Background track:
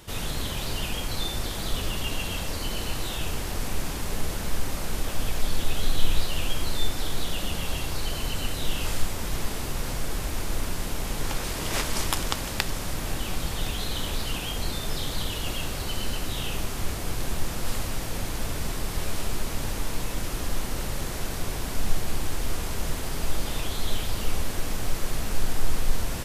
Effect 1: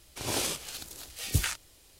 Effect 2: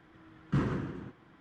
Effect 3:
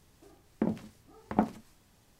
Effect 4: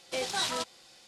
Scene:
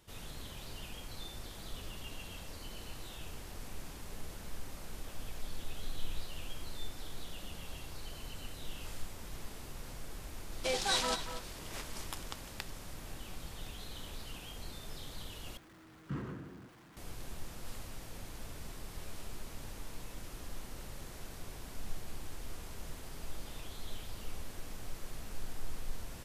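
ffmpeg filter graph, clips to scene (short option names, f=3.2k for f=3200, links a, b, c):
-filter_complex "[0:a]volume=-16dB[a];[4:a]asplit=2[b][c];[c]adelay=239.1,volume=-10dB,highshelf=f=4k:g=-5.38[d];[b][d]amix=inputs=2:normalize=0[e];[2:a]aeval=exprs='val(0)+0.5*0.00668*sgn(val(0))':c=same[f];[a]asplit=2[g][h];[g]atrim=end=15.574[i];[f]atrim=end=1.4,asetpts=PTS-STARTPTS,volume=-11dB[j];[h]atrim=start=16.966[k];[e]atrim=end=1.07,asetpts=PTS-STARTPTS,volume=-1dB,afade=t=in:d=0.004:c=hsin,afade=t=out:st=1.066:d=0.004:c=hsin,adelay=10520[l];[i][j]acrossfade=d=0.004:c1=hsin:c2=hsin[m];[m][k]acrossfade=d=0.004:c1=hsin:c2=hsin[n];[n][l]amix=inputs=2:normalize=0"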